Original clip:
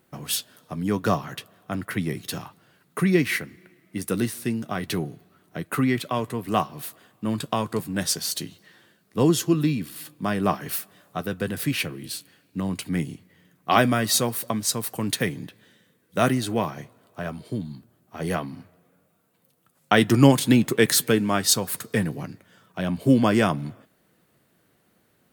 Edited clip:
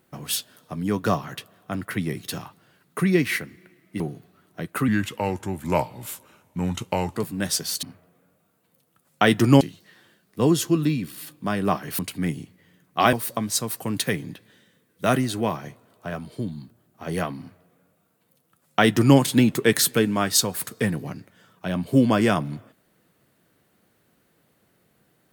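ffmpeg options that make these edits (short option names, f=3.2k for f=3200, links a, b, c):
-filter_complex "[0:a]asplit=8[a][b][c][d][e][f][g][h];[a]atrim=end=4.002[i];[b]atrim=start=4.968:end=5.854[j];[c]atrim=start=5.85:end=7.71,asetpts=PTS-STARTPTS,asetrate=36162,aresample=44100[k];[d]atrim=start=7.706:end=8.392[l];[e]atrim=start=18.528:end=20.312[m];[f]atrim=start=8.388:end=10.772[n];[g]atrim=start=12.698:end=13.842[o];[h]atrim=start=14.258[p];[i][j]acrossfade=d=0.004:c1=hsin:c2=hsin[q];[q][k]acrossfade=d=0.004:c1=hsin:c2=hsin[r];[r][l]acrossfade=d=0.004:c1=hsin:c2=hsin[s];[s][m]acrossfade=d=0.004:c1=hsin:c2=hsin[t];[t][n]acrossfade=d=0.004:c1=hsin:c2=hsin[u];[u][o]acrossfade=d=0.004:c1=hsin:c2=hsin[v];[v][p]acrossfade=d=0.004:c1=hsin:c2=hsin"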